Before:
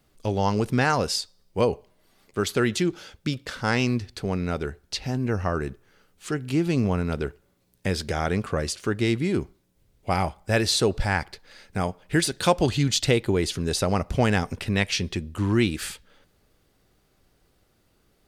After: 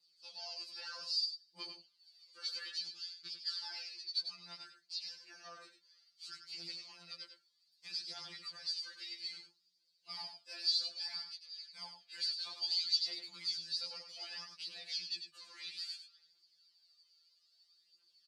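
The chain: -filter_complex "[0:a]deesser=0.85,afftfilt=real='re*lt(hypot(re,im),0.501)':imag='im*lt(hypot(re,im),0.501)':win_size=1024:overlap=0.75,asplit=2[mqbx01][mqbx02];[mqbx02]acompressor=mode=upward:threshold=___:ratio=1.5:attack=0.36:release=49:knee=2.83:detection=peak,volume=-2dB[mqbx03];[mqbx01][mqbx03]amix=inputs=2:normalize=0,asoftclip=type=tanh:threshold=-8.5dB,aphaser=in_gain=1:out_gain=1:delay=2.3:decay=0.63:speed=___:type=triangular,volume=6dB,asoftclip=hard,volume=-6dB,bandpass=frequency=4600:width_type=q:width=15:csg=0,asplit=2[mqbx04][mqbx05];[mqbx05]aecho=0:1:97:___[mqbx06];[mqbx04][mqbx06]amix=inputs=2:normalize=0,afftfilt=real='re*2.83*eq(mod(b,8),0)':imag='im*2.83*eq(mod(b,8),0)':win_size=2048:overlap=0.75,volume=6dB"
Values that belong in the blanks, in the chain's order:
-43dB, 0.61, 0.398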